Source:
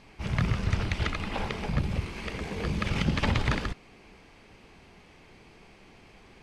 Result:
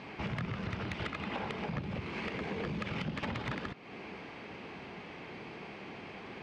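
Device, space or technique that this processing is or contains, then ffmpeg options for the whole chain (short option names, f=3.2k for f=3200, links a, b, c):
AM radio: -af "highpass=140,lowpass=3.3k,acompressor=threshold=-45dB:ratio=4,asoftclip=type=tanh:threshold=-36.5dB,volume=9.5dB"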